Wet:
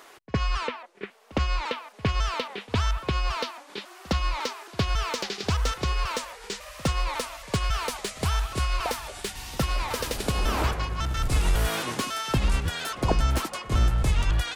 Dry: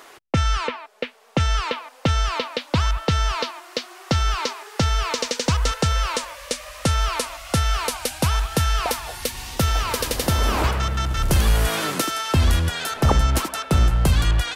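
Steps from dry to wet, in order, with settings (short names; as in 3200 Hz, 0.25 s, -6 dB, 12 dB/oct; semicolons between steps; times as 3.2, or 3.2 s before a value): trilling pitch shifter -3.5 st, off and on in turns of 0.275 s; pre-echo 60 ms -22 dB; slew limiter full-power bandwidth 330 Hz; gain -4.5 dB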